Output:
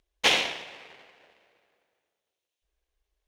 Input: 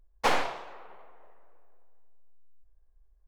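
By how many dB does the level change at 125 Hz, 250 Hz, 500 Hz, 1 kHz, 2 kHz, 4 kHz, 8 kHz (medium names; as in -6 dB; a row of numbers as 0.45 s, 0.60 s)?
-1.5 dB, 0.0 dB, -1.0 dB, -4.0 dB, +6.5 dB, +12.5 dB, +8.5 dB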